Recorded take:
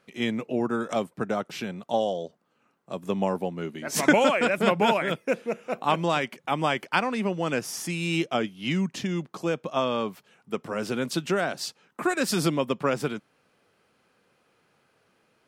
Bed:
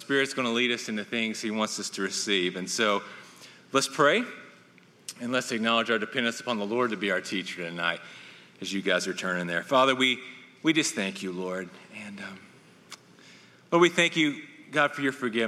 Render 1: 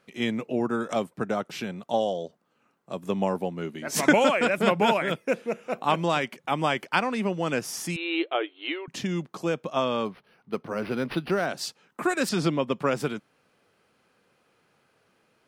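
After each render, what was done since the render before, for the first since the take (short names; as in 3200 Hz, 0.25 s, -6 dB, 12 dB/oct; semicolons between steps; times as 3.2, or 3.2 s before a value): 7.96–8.88 brick-wall FIR band-pass 280–4300 Hz; 10.05–11.46 decimation joined by straight lines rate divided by 6×; 12.29–12.72 air absorption 83 m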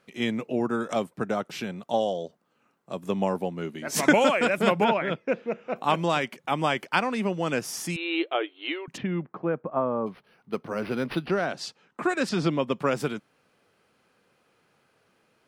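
4.84–5.76 air absorption 190 m; 8.96–10.06 LPF 2800 Hz -> 1100 Hz 24 dB/oct; 11.26–12.51 air absorption 62 m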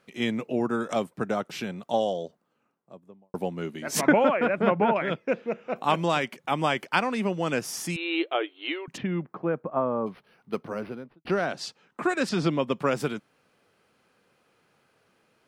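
2.12–3.34 studio fade out; 4.01–4.96 LPF 1800 Hz; 10.55–11.25 studio fade out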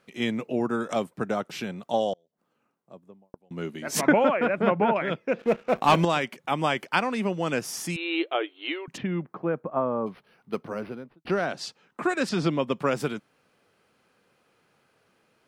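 2.13–3.51 flipped gate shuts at -25 dBFS, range -33 dB; 5.39–6.05 sample leveller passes 2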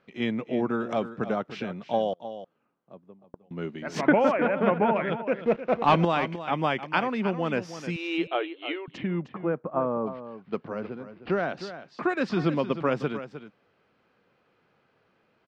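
air absorption 200 m; echo 0.309 s -12 dB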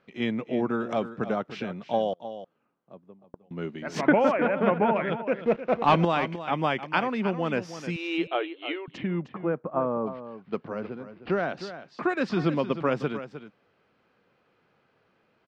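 nothing audible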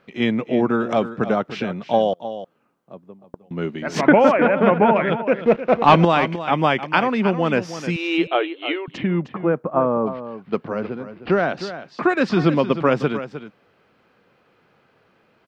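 gain +8 dB; limiter -2 dBFS, peak gain reduction 1.5 dB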